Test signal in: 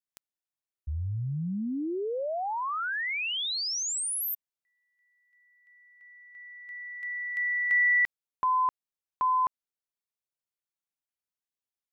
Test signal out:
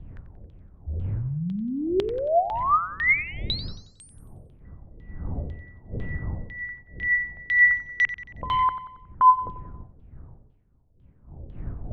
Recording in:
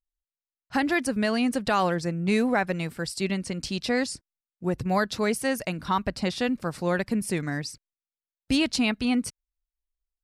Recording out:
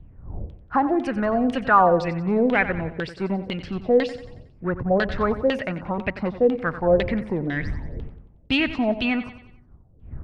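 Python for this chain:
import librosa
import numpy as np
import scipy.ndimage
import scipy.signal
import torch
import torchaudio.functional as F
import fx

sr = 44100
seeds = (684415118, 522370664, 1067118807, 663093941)

p1 = fx.dmg_wind(x, sr, seeds[0], corner_hz=92.0, level_db=-40.0)
p2 = 10.0 ** (-26.5 / 20.0) * (np.abs((p1 / 10.0 ** (-26.5 / 20.0) + 3.0) % 4.0 - 2.0) - 1.0)
p3 = p1 + F.gain(torch.from_numpy(p2), -10.5).numpy()
p4 = fx.filter_lfo_lowpass(p3, sr, shape='saw_down', hz=2.0, low_hz=420.0, high_hz=3400.0, q=4.5)
y = fx.echo_feedback(p4, sr, ms=91, feedback_pct=47, wet_db=-13.0)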